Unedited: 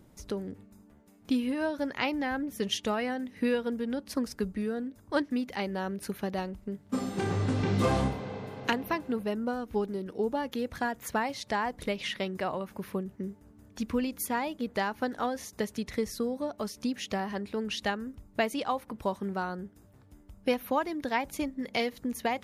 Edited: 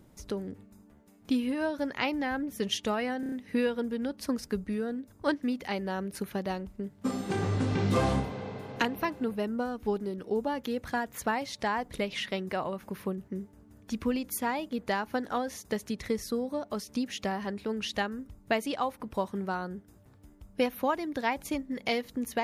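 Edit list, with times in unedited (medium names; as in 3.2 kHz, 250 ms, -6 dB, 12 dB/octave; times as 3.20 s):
3.20 s: stutter 0.03 s, 5 plays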